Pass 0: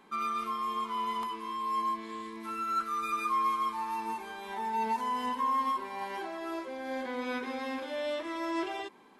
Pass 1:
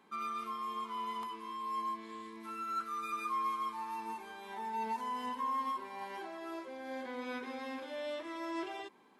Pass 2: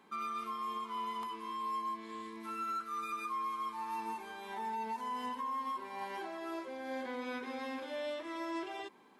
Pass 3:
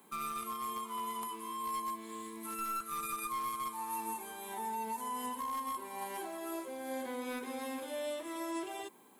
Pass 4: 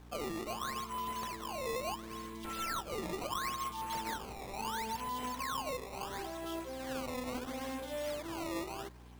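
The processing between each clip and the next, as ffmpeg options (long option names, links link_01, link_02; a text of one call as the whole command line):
ffmpeg -i in.wav -af "highpass=56,volume=-6dB" out.wav
ffmpeg -i in.wav -af "alimiter=level_in=9dB:limit=-24dB:level=0:latency=1:release=301,volume=-9dB,volume=2dB" out.wav
ffmpeg -i in.wav -filter_complex "[0:a]acrossover=split=330|1500|1900[link_01][link_02][link_03][link_04];[link_03]acrusher=bits=5:dc=4:mix=0:aa=0.000001[link_05];[link_04]aexciter=amount=8.3:drive=3.6:freq=7400[link_06];[link_01][link_02][link_05][link_06]amix=inputs=4:normalize=0,volume=1dB" out.wav
ffmpeg -i in.wav -af "aeval=exprs='val(0)+0.00224*(sin(2*PI*60*n/s)+sin(2*PI*2*60*n/s)/2+sin(2*PI*3*60*n/s)/3+sin(2*PI*4*60*n/s)/4+sin(2*PI*5*60*n/s)/5)':channel_layout=same,acrusher=samples=16:mix=1:aa=0.000001:lfo=1:lforange=25.6:lforate=0.73" out.wav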